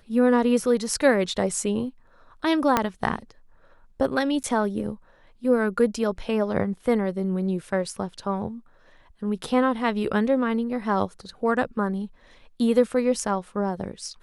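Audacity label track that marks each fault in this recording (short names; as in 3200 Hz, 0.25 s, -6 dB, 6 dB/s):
2.770000	2.770000	pop -5 dBFS
4.430000	4.440000	gap 8.9 ms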